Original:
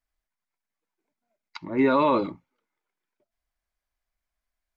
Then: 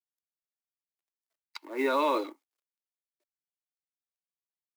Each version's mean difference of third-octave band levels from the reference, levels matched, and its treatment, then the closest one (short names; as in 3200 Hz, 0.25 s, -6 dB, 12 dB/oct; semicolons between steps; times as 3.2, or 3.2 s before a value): 9.0 dB: G.711 law mismatch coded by A; steep high-pass 290 Hz 48 dB/oct; high shelf 3200 Hz +9 dB; gain -5 dB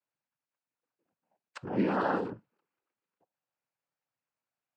6.0 dB: high shelf 2500 Hz -11 dB; compressor 2.5:1, threshold -28 dBFS, peak gain reduction 7.5 dB; noise vocoder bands 8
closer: second